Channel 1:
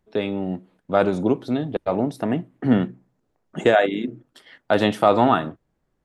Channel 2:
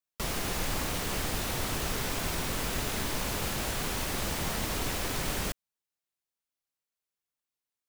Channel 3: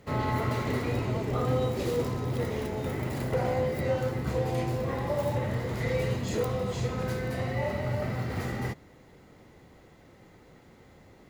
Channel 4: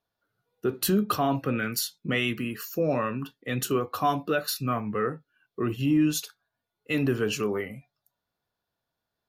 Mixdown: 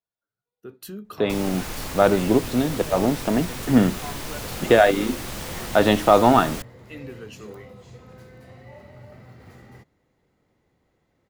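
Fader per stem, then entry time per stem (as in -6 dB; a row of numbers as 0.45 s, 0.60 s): +1.5 dB, -1.0 dB, -14.5 dB, -13.5 dB; 1.05 s, 1.10 s, 1.10 s, 0.00 s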